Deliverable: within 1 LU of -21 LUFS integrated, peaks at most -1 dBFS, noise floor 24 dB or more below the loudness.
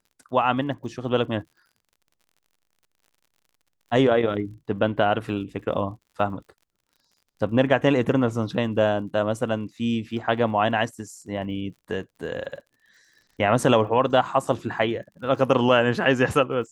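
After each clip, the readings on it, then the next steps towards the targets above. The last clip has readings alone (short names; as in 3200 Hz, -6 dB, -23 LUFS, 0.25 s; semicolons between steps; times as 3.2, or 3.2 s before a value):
ticks 54/s; loudness -23.5 LUFS; peak -5.0 dBFS; loudness target -21.0 LUFS
-> de-click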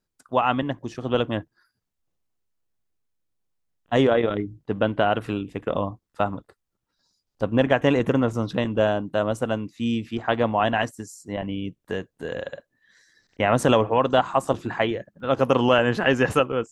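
ticks 0.18/s; loudness -24.0 LUFS; peak -5.0 dBFS; loudness target -21.0 LUFS
-> gain +3 dB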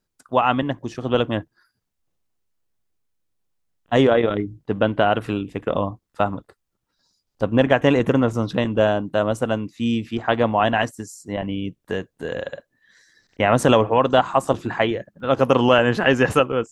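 loudness -21.0 LUFS; peak -2.0 dBFS; noise floor -77 dBFS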